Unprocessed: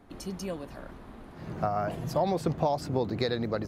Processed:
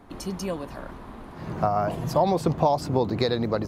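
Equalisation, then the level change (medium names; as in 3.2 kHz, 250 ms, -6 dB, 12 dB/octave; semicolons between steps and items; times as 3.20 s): peaking EQ 1 kHz +5 dB 0.5 oct; dynamic bell 1.7 kHz, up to -4 dB, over -43 dBFS, Q 1.5; +5.0 dB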